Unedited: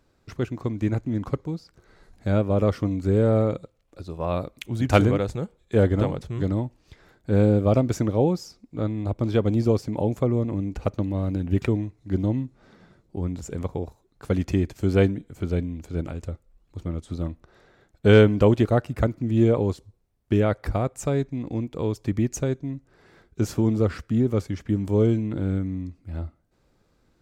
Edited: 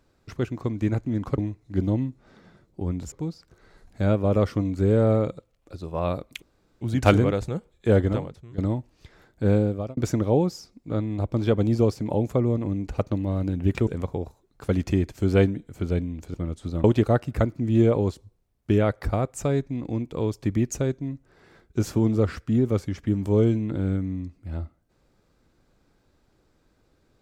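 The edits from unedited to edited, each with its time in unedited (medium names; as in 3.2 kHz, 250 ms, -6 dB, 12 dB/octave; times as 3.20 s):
4.68 s: insert room tone 0.39 s
5.91–6.45 s: fade out quadratic, to -16 dB
7.33–7.84 s: fade out
11.74–13.48 s: move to 1.38 s
15.95–16.80 s: delete
17.30–18.46 s: delete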